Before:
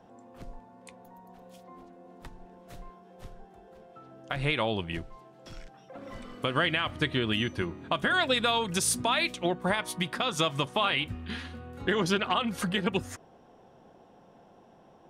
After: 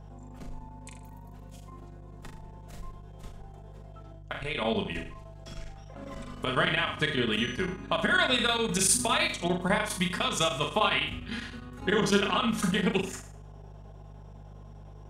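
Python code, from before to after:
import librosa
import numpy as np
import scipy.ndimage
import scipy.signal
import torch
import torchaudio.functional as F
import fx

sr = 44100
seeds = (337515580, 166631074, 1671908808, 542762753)

y = fx.peak_eq(x, sr, hz=7400.0, db=5.5, octaves=0.59)
y = y + 0.52 * np.pad(y, (int(4.8 * sr / 1000.0), 0))[:len(y)]
y = fx.level_steps(y, sr, step_db=16, at=(4.14, 4.61), fade=0.02)
y = fx.room_flutter(y, sr, wall_m=6.8, rt60_s=0.46)
y = fx.chopper(y, sr, hz=9.9, depth_pct=60, duty_pct=85)
y = fx.dmg_buzz(y, sr, base_hz=50.0, harmonics=3, level_db=-46.0, tilt_db=-3, odd_only=False)
y = y * 10.0 ** (-1.0 / 20.0)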